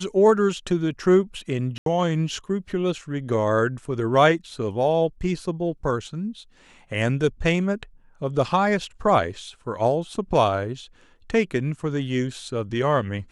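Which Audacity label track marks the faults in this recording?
1.780000	1.860000	dropout 82 ms

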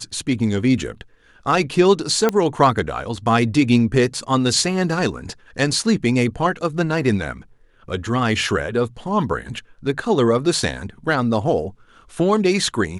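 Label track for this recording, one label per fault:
2.290000	2.290000	pop -5 dBFS

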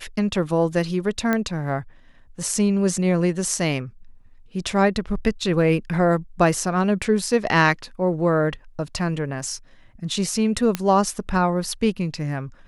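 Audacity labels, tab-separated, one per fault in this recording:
1.330000	1.330000	pop -9 dBFS
10.750000	10.750000	pop -8 dBFS

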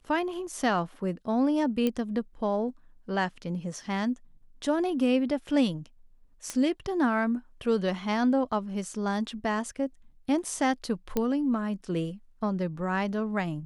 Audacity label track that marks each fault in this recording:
1.870000	1.870000	pop -15 dBFS
6.500000	6.500000	pop -17 dBFS
11.170000	11.170000	pop -13 dBFS

